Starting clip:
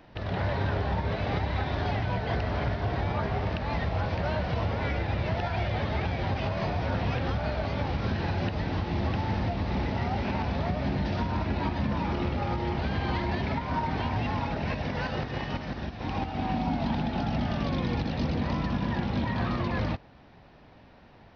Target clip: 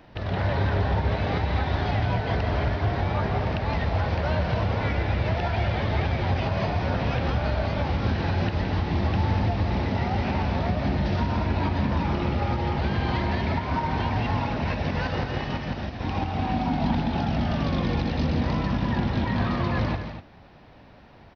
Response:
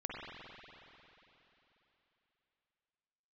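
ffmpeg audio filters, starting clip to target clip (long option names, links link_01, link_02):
-filter_complex "[0:a]equalizer=frequency=82:width_type=o:width=0.77:gain=2,asplit=2[link_01][link_02];[link_02]aecho=0:1:166.2|244.9:0.355|0.282[link_03];[link_01][link_03]amix=inputs=2:normalize=0,volume=2.5dB"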